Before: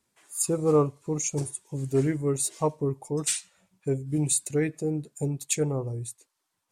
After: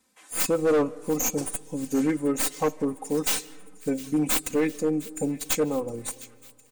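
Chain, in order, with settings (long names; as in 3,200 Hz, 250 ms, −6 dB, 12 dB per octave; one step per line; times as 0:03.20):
stylus tracing distortion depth 0.13 ms
low-shelf EQ 91 Hz −8 dB
comb filter 3.9 ms, depth 88%
in parallel at −3 dB: downward compressor, threshold −33 dBFS, peak gain reduction 17.5 dB
on the sum: hard clipping −17.5 dBFS, distortion −13 dB
delay with a high-pass on its return 709 ms, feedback 64%, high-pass 1,900 Hz, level −18 dB
on a send at −21.5 dB: convolution reverb RT60 1.8 s, pre-delay 110 ms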